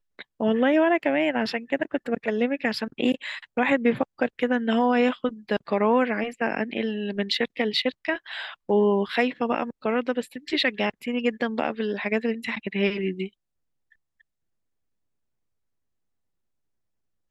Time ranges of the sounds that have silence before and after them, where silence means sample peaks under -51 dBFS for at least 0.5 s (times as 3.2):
13.92–14.21